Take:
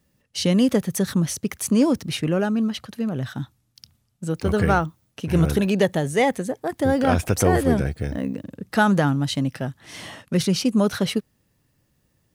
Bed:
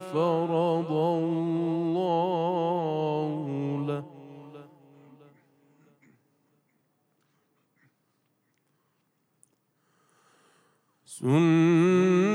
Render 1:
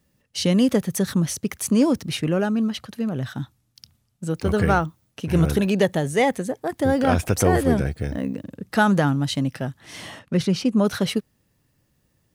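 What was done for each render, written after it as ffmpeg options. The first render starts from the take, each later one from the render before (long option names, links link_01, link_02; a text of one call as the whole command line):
ffmpeg -i in.wav -filter_complex "[0:a]asettb=1/sr,asplit=3[link_01][link_02][link_03];[link_01]atrim=end=10.194[link_04];[link_02]atrim=start=10.19:end=10.85,asetpts=PTS-STARTPTS,afade=type=in:duration=0.004:curve=qsin,afade=type=out:start_time=0.656:duration=0.004:curve=qsin,lowpass=frequency=3200:poles=1[link_05];[link_03]atrim=start=10.846[link_06];[link_04][link_05]acrossfade=duration=0.004:curve1=hsin:curve2=qsin[link_07];[link_07][link_06]acrossfade=duration=0.004:curve1=qsin:curve2=hsin" out.wav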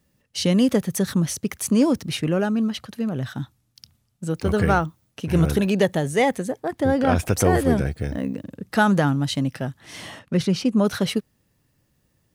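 ffmpeg -i in.wav -filter_complex "[0:a]asettb=1/sr,asplit=3[link_01][link_02][link_03];[link_01]atrim=end=6.614[link_04];[link_02]atrim=start=6.61:end=7.16,asetpts=PTS-STARTPTS,afade=type=in:duration=0.004:curve=qsin,afade=type=out:start_time=0.546:duration=0.004:curve=qsin,highshelf=frequency=5800:gain=-8[link_05];[link_03]atrim=start=7.156[link_06];[link_04][link_05]acrossfade=duration=0.004:curve1=hsin:curve2=qsin[link_07];[link_07][link_06]acrossfade=duration=0.004:curve1=qsin:curve2=hsin" out.wav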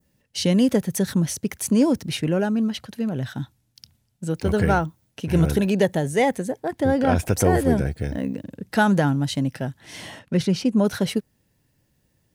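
ffmpeg -i in.wav -af "adynamicequalizer=threshold=0.01:dfrequency=3200:dqfactor=0.91:tfrequency=3200:tqfactor=0.91:attack=5:release=100:ratio=0.375:range=2:mode=cutabove:tftype=bell,bandreject=frequency=1200:width=6.2" out.wav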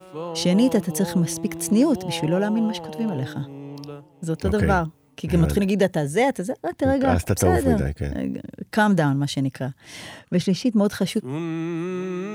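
ffmpeg -i in.wav -i bed.wav -filter_complex "[1:a]volume=-6.5dB[link_01];[0:a][link_01]amix=inputs=2:normalize=0" out.wav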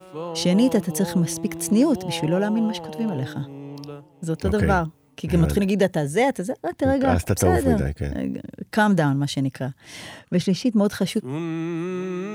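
ffmpeg -i in.wav -af anull out.wav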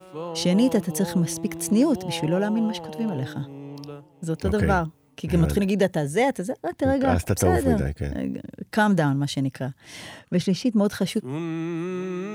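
ffmpeg -i in.wav -af "volume=-1.5dB" out.wav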